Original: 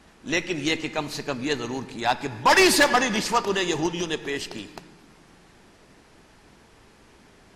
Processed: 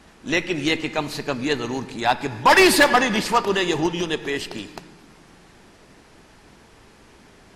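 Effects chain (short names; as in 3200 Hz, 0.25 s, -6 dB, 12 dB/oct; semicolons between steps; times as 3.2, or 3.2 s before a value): dynamic EQ 6200 Hz, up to -6 dB, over -43 dBFS, Q 1.7; gain +3.5 dB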